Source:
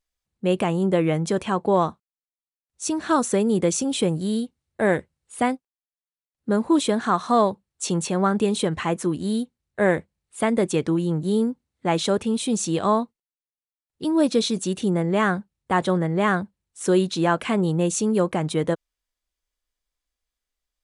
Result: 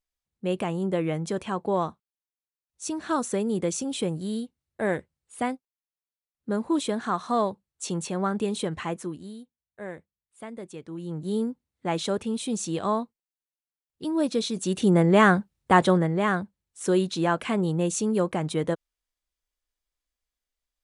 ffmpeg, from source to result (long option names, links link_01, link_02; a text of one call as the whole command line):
ffmpeg -i in.wav -af "volume=15.5dB,afade=type=out:start_time=8.84:duration=0.51:silence=0.251189,afade=type=in:start_time=10.88:duration=0.48:silence=0.237137,afade=type=in:start_time=14.54:duration=0.44:silence=0.354813,afade=type=out:start_time=15.73:duration=0.47:silence=0.446684" out.wav